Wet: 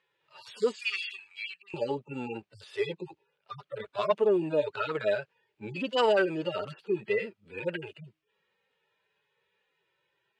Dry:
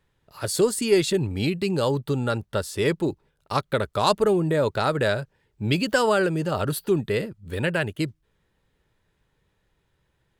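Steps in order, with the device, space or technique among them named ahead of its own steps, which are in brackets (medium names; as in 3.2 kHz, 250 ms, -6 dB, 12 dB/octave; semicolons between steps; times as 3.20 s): harmonic-percussive separation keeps harmonic; intercom (band-pass 370–4800 Hz; peaking EQ 2.6 kHz +8 dB 0.59 oct; saturation -13 dBFS, distortion -22 dB); 0.76–1.74 s: inverse Chebyshev high-pass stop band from 680 Hz, stop band 40 dB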